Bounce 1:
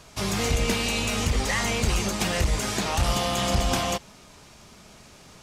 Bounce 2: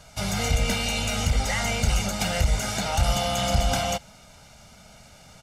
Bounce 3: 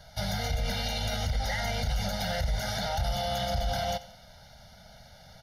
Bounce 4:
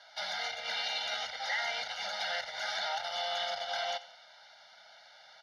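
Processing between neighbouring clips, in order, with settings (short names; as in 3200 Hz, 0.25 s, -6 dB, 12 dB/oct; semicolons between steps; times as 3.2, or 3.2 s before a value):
comb 1.4 ms, depth 68%; gain -2 dB
fixed phaser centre 1700 Hz, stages 8; limiter -21.5 dBFS, peak gain reduction 9 dB; thinning echo 90 ms, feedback 47%, level -17 dB
Butterworth band-pass 2000 Hz, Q 0.55; gain +1.5 dB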